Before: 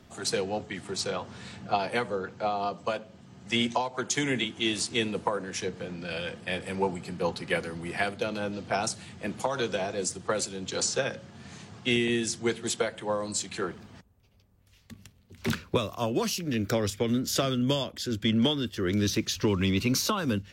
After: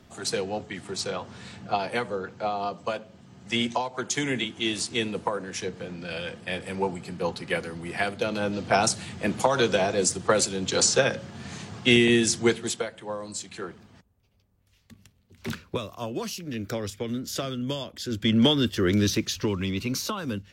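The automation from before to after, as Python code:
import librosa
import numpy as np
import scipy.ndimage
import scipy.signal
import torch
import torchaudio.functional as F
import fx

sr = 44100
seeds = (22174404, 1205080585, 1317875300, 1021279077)

y = fx.gain(x, sr, db=fx.line((7.88, 0.5), (8.77, 7.0), (12.44, 7.0), (12.9, -4.0), (17.78, -4.0), (18.65, 7.5), (19.66, -3.0)))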